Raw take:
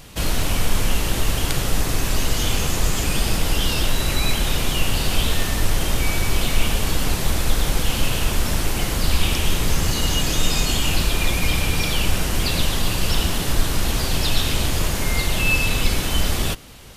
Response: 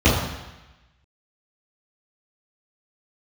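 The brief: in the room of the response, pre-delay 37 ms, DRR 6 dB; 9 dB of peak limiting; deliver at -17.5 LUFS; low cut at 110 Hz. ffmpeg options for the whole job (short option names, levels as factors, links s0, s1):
-filter_complex "[0:a]highpass=110,alimiter=limit=0.15:level=0:latency=1,asplit=2[s0][s1];[1:a]atrim=start_sample=2205,adelay=37[s2];[s1][s2]afir=irnorm=-1:irlink=0,volume=0.0398[s3];[s0][s3]amix=inputs=2:normalize=0,volume=1.78"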